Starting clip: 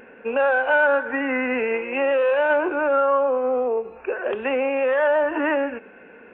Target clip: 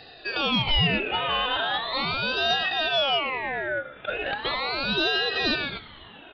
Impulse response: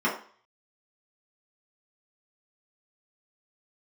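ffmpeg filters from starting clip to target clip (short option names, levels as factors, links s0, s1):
-filter_complex "[0:a]equalizer=f=2000:w=1:g=9.5,aecho=1:1:2.8:0.48,asplit=5[s0][s1][s2][s3][s4];[s1]adelay=144,afreqshift=-71,volume=0.0708[s5];[s2]adelay=288,afreqshift=-142,volume=0.0398[s6];[s3]adelay=432,afreqshift=-213,volume=0.0221[s7];[s4]adelay=576,afreqshift=-284,volume=0.0124[s8];[s0][s5][s6][s7][s8]amix=inputs=5:normalize=0,aresample=16000,asoftclip=type=tanh:threshold=0.266,aresample=44100,aresample=8000,aresample=44100,aeval=exprs='val(0)*sin(2*PI*1600*n/s+1600*0.4/0.38*sin(2*PI*0.38*n/s))':c=same,volume=0.708"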